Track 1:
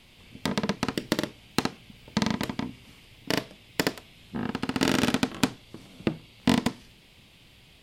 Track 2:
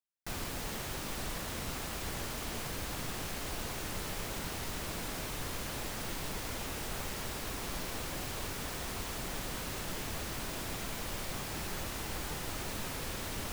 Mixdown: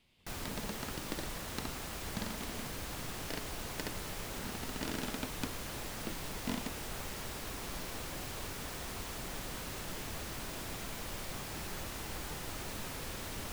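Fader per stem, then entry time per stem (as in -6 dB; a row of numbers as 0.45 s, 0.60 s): -16.0 dB, -3.0 dB; 0.00 s, 0.00 s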